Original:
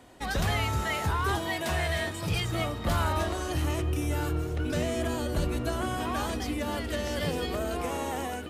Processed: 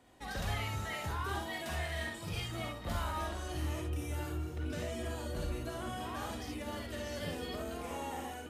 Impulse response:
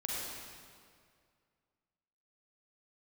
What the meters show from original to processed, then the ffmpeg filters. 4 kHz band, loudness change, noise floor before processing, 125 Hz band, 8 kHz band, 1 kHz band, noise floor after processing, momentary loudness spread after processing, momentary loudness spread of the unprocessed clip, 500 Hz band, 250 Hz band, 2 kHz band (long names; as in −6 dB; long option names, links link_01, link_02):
−8.0 dB, −9.0 dB, −36 dBFS, −9.0 dB, −8.5 dB, −8.5 dB, −45 dBFS, 4 LU, 4 LU, −9.5 dB, −9.5 dB, −8.5 dB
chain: -filter_complex "[1:a]atrim=start_sample=2205,atrim=end_sample=3528[link_01];[0:a][link_01]afir=irnorm=-1:irlink=0,volume=-8.5dB"